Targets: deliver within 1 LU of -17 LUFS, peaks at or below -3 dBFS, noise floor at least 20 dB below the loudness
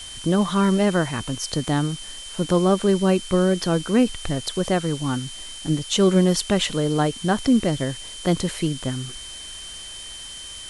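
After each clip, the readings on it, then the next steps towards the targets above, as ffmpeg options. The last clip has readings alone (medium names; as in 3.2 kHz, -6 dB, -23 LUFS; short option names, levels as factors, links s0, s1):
steady tone 3.1 kHz; tone level -37 dBFS; noise floor -37 dBFS; noise floor target -42 dBFS; loudness -22.0 LUFS; peak level -6.0 dBFS; loudness target -17.0 LUFS
-> -af "bandreject=f=3100:w=30"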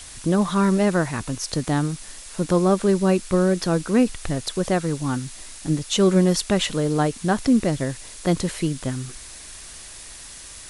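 steady tone not found; noise floor -40 dBFS; noise floor target -42 dBFS
-> -af "afftdn=nr=6:nf=-40"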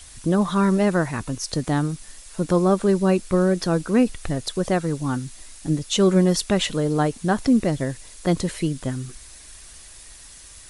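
noise floor -44 dBFS; loudness -22.0 LUFS; peak level -6.0 dBFS; loudness target -17.0 LUFS
-> -af "volume=1.78,alimiter=limit=0.708:level=0:latency=1"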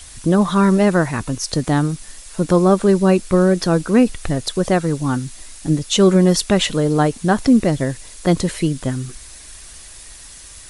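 loudness -17.0 LUFS; peak level -3.0 dBFS; noise floor -39 dBFS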